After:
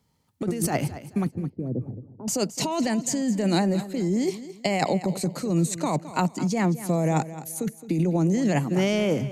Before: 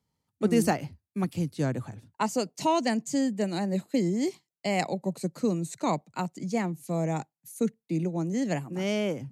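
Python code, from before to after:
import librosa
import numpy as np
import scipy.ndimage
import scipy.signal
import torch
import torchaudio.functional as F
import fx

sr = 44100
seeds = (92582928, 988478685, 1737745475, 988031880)

y = fx.over_compress(x, sr, threshold_db=-30.0, ratio=-1.0)
y = fx.ladder_lowpass(y, sr, hz=570.0, resonance_pct=25, at=(1.28, 2.28))
y = fx.echo_feedback(y, sr, ms=216, feedback_pct=32, wet_db=-14.5)
y = y * librosa.db_to_amplitude(7.0)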